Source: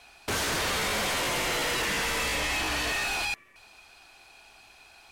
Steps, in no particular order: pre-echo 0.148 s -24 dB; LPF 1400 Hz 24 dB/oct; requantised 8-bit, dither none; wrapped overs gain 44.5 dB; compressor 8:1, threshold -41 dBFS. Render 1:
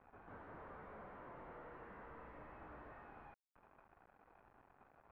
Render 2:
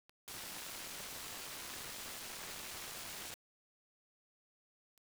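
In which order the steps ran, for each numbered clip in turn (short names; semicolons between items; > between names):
pre-echo > compressor > requantised > wrapped overs > LPF; LPF > compressor > wrapped overs > pre-echo > requantised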